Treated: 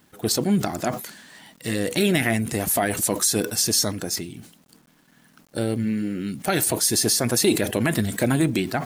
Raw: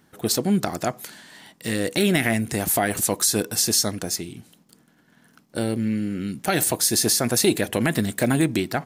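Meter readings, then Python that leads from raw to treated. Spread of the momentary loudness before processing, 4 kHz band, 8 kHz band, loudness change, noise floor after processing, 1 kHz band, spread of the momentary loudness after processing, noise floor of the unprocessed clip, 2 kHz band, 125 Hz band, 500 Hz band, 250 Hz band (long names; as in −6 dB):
10 LU, 0.0 dB, −0.5 dB, 0.0 dB, −58 dBFS, −0.5 dB, 9 LU, −60 dBFS, −0.5 dB, +0.5 dB, 0.0 dB, 0.0 dB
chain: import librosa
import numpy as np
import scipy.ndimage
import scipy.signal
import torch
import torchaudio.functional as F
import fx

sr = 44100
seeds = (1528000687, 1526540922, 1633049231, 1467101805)

y = fx.spec_quant(x, sr, step_db=15)
y = fx.quant_dither(y, sr, seeds[0], bits=10, dither='none')
y = fx.sustainer(y, sr, db_per_s=120.0)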